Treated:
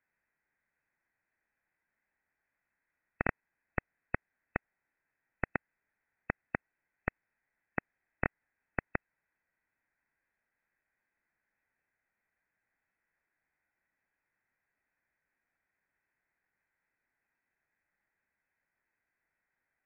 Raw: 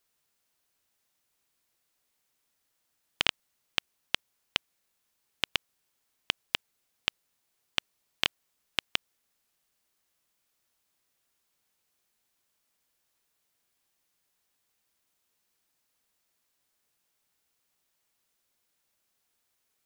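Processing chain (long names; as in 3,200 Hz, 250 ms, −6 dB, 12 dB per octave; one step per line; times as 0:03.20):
flat-topped bell 900 Hz +9.5 dB 1.1 octaves
voice inversion scrambler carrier 3,100 Hz
formants moved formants −3 semitones
level −4 dB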